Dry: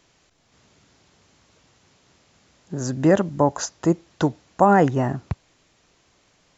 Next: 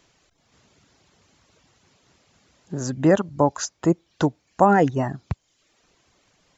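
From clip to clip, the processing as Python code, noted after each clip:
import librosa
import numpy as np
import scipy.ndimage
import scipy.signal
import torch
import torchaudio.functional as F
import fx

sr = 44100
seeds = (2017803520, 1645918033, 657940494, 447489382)

y = fx.dereverb_blind(x, sr, rt60_s=0.65)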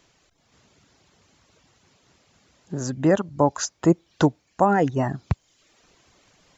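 y = fx.rider(x, sr, range_db=4, speed_s=0.5)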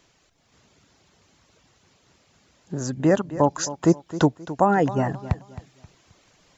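y = fx.echo_feedback(x, sr, ms=265, feedback_pct=31, wet_db=-14.5)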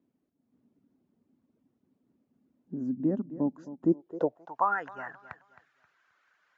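y = fx.filter_sweep_bandpass(x, sr, from_hz=250.0, to_hz=1500.0, start_s=3.85, end_s=4.8, q=4.9)
y = y * librosa.db_to_amplitude(1.5)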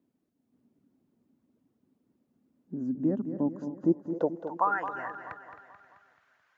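y = fx.echo_feedback(x, sr, ms=217, feedback_pct=55, wet_db=-10.0)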